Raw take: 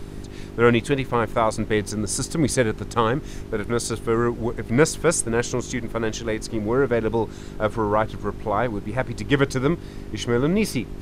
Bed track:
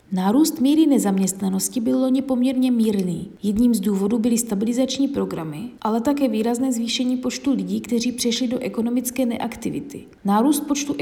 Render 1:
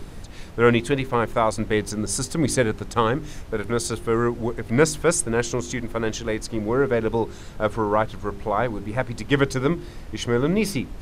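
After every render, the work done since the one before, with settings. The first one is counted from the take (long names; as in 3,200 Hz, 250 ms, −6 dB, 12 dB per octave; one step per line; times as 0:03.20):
hum removal 50 Hz, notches 8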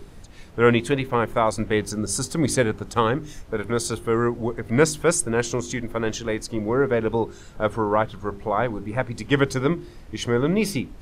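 noise reduction from a noise print 6 dB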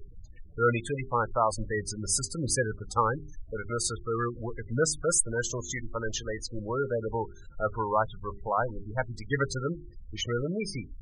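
gate on every frequency bin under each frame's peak −15 dB strong
parametric band 270 Hz −13 dB 2.1 octaves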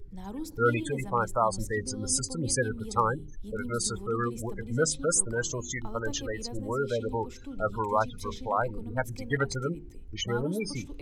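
mix in bed track −21.5 dB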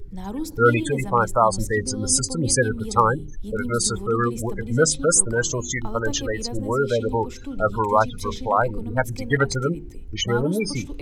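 level +8 dB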